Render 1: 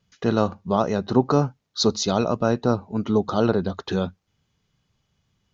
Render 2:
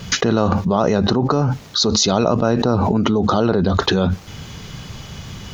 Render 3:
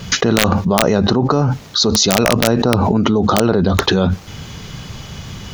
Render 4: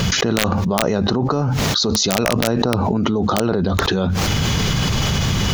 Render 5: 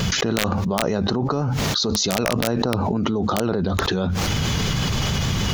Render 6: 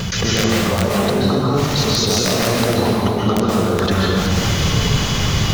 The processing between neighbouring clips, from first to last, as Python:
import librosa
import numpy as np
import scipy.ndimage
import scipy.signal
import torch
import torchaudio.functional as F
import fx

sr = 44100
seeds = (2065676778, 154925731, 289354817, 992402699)

y1 = fx.env_flatten(x, sr, amount_pct=100)
y1 = y1 * librosa.db_to_amplitude(-3.0)
y2 = (np.mod(10.0 ** (3.5 / 20.0) * y1 + 1.0, 2.0) - 1.0) / 10.0 ** (3.5 / 20.0)
y2 = y2 * librosa.db_to_amplitude(2.5)
y3 = fx.env_flatten(y2, sr, amount_pct=100)
y3 = y3 * librosa.db_to_amplitude(-6.0)
y4 = fx.vibrato(y3, sr, rate_hz=6.5, depth_cents=34.0)
y4 = y4 * librosa.db_to_amplitude(-3.5)
y5 = fx.rev_plate(y4, sr, seeds[0], rt60_s=1.9, hf_ratio=0.9, predelay_ms=115, drr_db=-5.0)
y5 = y5 * librosa.db_to_amplitude(-1.0)